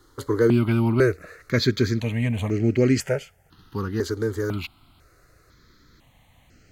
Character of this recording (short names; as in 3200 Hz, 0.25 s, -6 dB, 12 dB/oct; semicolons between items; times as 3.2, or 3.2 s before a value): notches that jump at a steady rate 2 Hz 680–3600 Hz